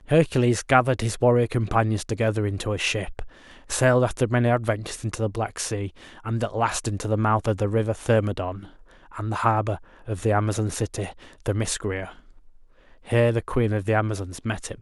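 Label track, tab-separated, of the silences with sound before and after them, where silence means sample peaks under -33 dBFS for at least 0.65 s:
12.090000	13.080000	silence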